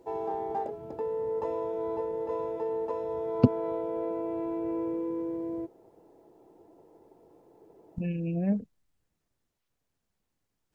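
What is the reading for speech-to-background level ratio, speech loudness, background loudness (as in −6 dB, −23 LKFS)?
3.5 dB, −29.5 LKFS, −33.0 LKFS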